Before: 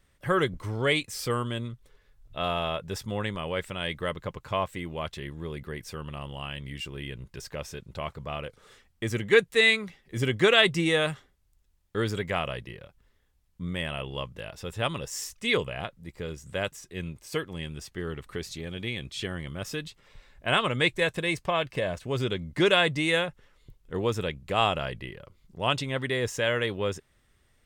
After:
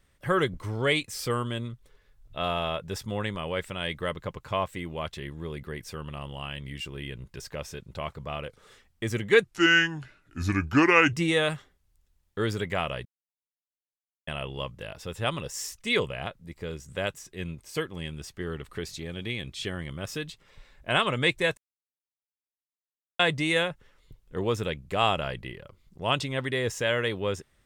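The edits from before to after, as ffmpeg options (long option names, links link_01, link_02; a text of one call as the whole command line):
ffmpeg -i in.wav -filter_complex "[0:a]asplit=7[link_01][link_02][link_03][link_04][link_05][link_06][link_07];[link_01]atrim=end=9.444[link_08];[link_02]atrim=start=9.44:end=10.71,asetpts=PTS-STARTPTS,asetrate=33075,aresample=44100[link_09];[link_03]atrim=start=10.706:end=12.63,asetpts=PTS-STARTPTS,afade=type=out:start_time=1.92:duration=0.004:curve=hsin[link_10];[link_04]atrim=start=12.63:end=13.85,asetpts=PTS-STARTPTS,volume=0[link_11];[link_05]atrim=start=13.85:end=21.15,asetpts=PTS-STARTPTS,afade=type=in:duration=0.004:curve=hsin,afade=type=out:start_time=7.296:duration=0.004:curve=hsin[link_12];[link_06]atrim=start=21.15:end=22.77,asetpts=PTS-STARTPTS,volume=0[link_13];[link_07]atrim=start=22.77,asetpts=PTS-STARTPTS,afade=type=in:duration=0.004:curve=hsin[link_14];[link_08][link_09]acrossfade=duration=0.004:curve1=hsin:curve2=hsin[link_15];[link_10][link_11][link_12][link_13][link_14]concat=n=5:v=0:a=1[link_16];[link_15][link_16]acrossfade=duration=0.004:curve1=hsin:curve2=hsin" out.wav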